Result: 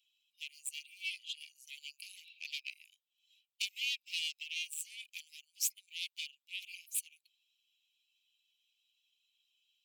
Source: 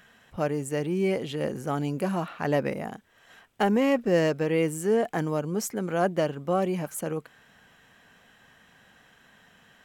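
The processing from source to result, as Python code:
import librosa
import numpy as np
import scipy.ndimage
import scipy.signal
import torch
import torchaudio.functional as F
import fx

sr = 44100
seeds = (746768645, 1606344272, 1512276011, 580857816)

y = fx.bin_expand(x, sr, power=1.5)
y = fx.cheby_harmonics(y, sr, harmonics=(6,), levels_db=(-13,), full_scale_db=-13.5)
y = scipy.signal.sosfilt(scipy.signal.butter(16, 2400.0, 'highpass', fs=sr, output='sos'), y)
y = y * 10.0 ** (1.5 / 20.0)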